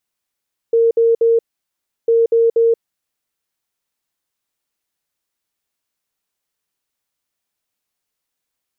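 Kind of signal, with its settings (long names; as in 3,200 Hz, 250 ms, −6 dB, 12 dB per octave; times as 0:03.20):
beeps in groups sine 460 Hz, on 0.18 s, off 0.06 s, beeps 3, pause 0.69 s, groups 2, −9.5 dBFS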